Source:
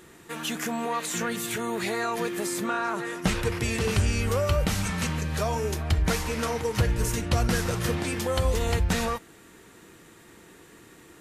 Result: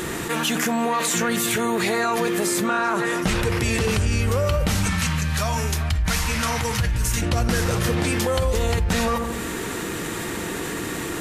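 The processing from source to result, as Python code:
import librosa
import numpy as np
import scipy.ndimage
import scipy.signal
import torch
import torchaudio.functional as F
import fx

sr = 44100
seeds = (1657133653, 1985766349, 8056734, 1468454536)

y = fx.peak_eq(x, sr, hz=410.0, db=-14.0, octaves=1.5, at=(4.89, 7.22))
y = fx.echo_filtered(y, sr, ms=82, feedback_pct=49, hz=1100.0, wet_db=-12.0)
y = fx.env_flatten(y, sr, amount_pct=70)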